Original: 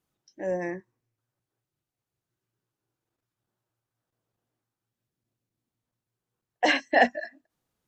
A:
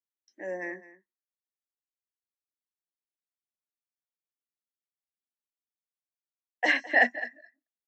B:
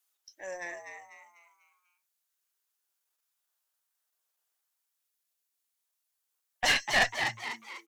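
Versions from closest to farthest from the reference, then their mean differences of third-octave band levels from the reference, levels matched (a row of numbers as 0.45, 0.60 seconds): A, B; 4.5, 12.5 decibels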